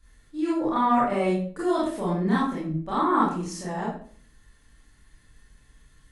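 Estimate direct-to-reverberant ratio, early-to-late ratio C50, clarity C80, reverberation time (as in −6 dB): −9.5 dB, 2.0 dB, 7.5 dB, 0.50 s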